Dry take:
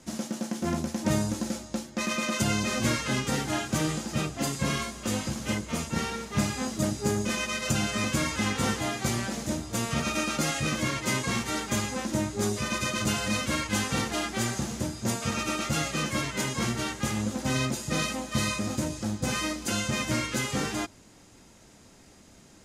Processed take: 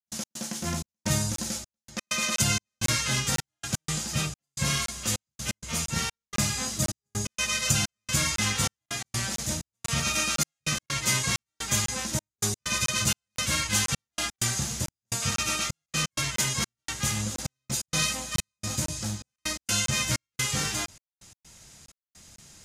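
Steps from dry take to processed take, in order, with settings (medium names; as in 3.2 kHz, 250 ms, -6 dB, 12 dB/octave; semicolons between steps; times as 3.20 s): FFT filter 150 Hz 0 dB, 260 Hz -11 dB, 5.9 kHz +6 dB; trance gate ".x.xxxx..xxxxx." 128 bpm -60 dB; crackling interface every 0.50 s, samples 1024, zero, from 0.86 s; trim +2 dB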